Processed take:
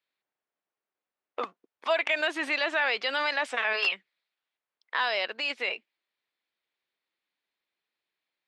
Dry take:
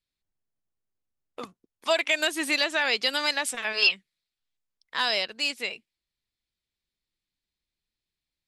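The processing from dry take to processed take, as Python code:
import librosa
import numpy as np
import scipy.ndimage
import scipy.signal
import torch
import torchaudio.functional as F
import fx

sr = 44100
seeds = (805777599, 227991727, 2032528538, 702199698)

p1 = fx.over_compress(x, sr, threshold_db=-33.0, ratio=-1.0)
p2 = x + F.gain(torch.from_numpy(p1), 0.0).numpy()
p3 = (np.mod(10.0 ** (9.0 / 20.0) * p2 + 1.0, 2.0) - 1.0) / 10.0 ** (9.0 / 20.0)
p4 = fx.bandpass_edges(p3, sr, low_hz=480.0, high_hz=2500.0)
y = F.gain(torch.from_numpy(p4), -1.5).numpy()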